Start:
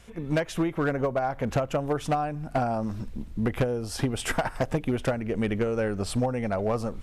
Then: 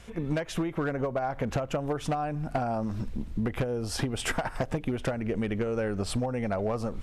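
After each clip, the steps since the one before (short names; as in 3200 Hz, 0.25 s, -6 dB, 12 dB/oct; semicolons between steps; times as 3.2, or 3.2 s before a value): high shelf 9800 Hz -6 dB; compressor, threshold -29 dBFS, peak gain reduction 8.5 dB; gain +3 dB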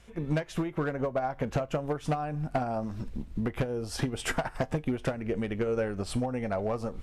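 resonator 51 Hz, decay 0.22 s, harmonics odd, mix 50%; upward expander 1.5:1, over -44 dBFS; gain +4.5 dB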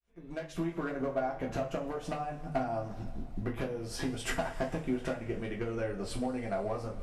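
opening faded in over 0.67 s; two-slope reverb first 0.26 s, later 3.4 s, from -22 dB, DRR -1.5 dB; gain -7 dB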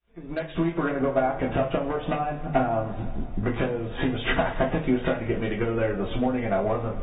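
gain +9 dB; AAC 16 kbps 32000 Hz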